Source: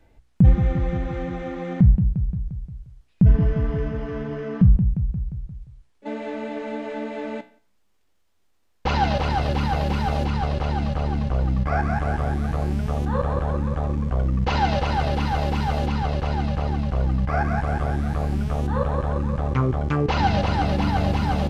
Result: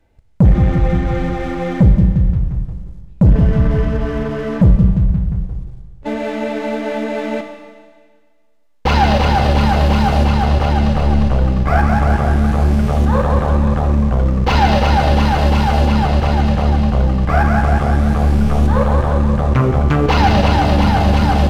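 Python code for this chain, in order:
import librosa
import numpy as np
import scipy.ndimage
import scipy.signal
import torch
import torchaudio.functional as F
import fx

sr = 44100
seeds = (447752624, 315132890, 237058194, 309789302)

y = fx.leveller(x, sr, passes=2)
y = fx.rev_schroeder(y, sr, rt60_s=1.7, comb_ms=29, drr_db=6.0)
y = F.gain(torch.from_numpy(y), 1.5).numpy()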